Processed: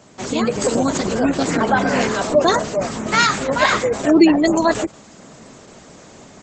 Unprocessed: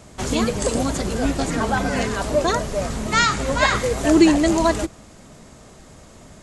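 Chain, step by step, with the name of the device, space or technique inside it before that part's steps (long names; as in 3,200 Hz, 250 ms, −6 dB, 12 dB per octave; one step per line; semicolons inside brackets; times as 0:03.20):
noise-suppressed video call (high-pass filter 160 Hz 12 dB per octave; gate on every frequency bin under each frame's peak −30 dB strong; automatic gain control gain up to 6 dB; Opus 12 kbit/s 48,000 Hz)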